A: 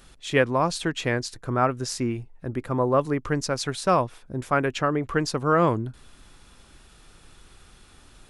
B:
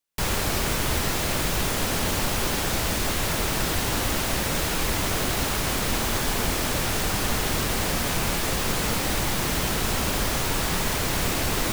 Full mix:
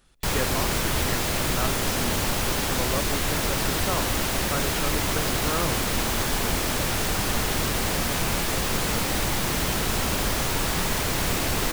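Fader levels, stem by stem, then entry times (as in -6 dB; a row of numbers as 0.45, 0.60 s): -9.5, 0.0 dB; 0.00, 0.05 s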